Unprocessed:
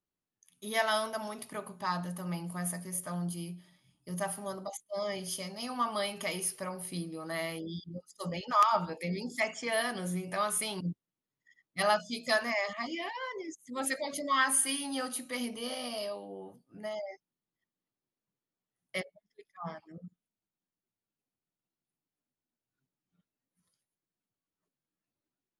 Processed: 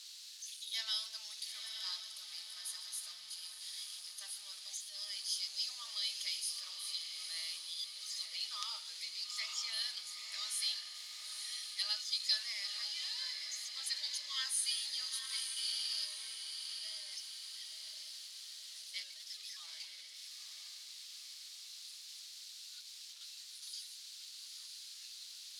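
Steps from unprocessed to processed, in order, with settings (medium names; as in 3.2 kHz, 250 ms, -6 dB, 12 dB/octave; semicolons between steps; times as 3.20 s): jump at every zero crossing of -35.5 dBFS; ladder band-pass 4.8 kHz, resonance 55%; echo that smears into a reverb 925 ms, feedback 53%, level -6 dB; trim +8 dB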